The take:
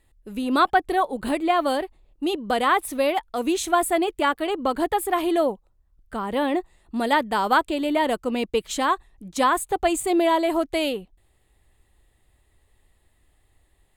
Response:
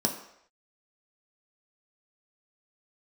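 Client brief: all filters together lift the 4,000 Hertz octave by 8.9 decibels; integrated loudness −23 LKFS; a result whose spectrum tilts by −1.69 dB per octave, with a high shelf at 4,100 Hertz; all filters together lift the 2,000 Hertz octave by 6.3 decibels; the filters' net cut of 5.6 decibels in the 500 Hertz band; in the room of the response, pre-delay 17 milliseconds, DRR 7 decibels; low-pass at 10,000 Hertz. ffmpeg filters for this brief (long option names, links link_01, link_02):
-filter_complex "[0:a]lowpass=10000,equalizer=frequency=500:width_type=o:gain=-9,equalizer=frequency=2000:width_type=o:gain=6,equalizer=frequency=4000:width_type=o:gain=5,highshelf=frequency=4100:gain=8.5,asplit=2[link_01][link_02];[1:a]atrim=start_sample=2205,adelay=17[link_03];[link_02][link_03]afir=irnorm=-1:irlink=0,volume=-15dB[link_04];[link_01][link_04]amix=inputs=2:normalize=0,volume=-2dB"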